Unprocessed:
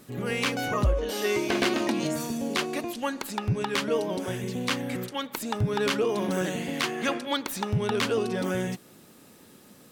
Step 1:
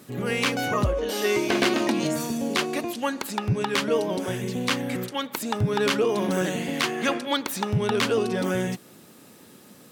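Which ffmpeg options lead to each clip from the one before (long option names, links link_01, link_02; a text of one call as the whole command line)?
ffmpeg -i in.wav -af "highpass=82,volume=3dB" out.wav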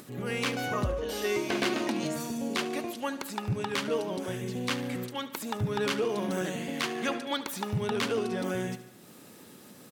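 ffmpeg -i in.wav -af "acompressor=mode=upward:threshold=-37dB:ratio=2.5,aecho=1:1:73|146|219|292|365|438:0.178|0.107|0.064|0.0384|0.023|0.0138,volume=-6.5dB" out.wav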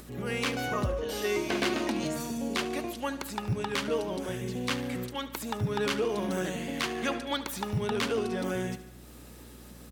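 ffmpeg -i in.wav -filter_complex "[0:a]acrossover=split=130[link_01][link_02];[link_01]acrusher=samples=8:mix=1:aa=0.000001[link_03];[link_03][link_02]amix=inputs=2:normalize=0,aeval=exprs='val(0)+0.00316*(sin(2*PI*60*n/s)+sin(2*PI*2*60*n/s)/2+sin(2*PI*3*60*n/s)/3+sin(2*PI*4*60*n/s)/4+sin(2*PI*5*60*n/s)/5)':channel_layout=same" out.wav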